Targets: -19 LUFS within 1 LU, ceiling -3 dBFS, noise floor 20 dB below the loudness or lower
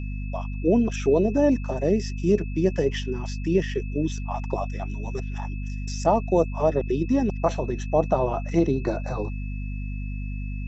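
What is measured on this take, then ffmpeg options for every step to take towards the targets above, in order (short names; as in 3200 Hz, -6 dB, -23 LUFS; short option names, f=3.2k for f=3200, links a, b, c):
hum 50 Hz; harmonics up to 250 Hz; hum level -28 dBFS; steady tone 2600 Hz; tone level -45 dBFS; loudness -25.5 LUFS; peak -7.0 dBFS; loudness target -19.0 LUFS
-> -af "bandreject=f=50:t=h:w=6,bandreject=f=100:t=h:w=6,bandreject=f=150:t=h:w=6,bandreject=f=200:t=h:w=6,bandreject=f=250:t=h:w=6"
-af "bandreject=f=2.6k:w=30"
-af "volume=6.5dB,alimiter=limit=-3dB:level=0:latency=1"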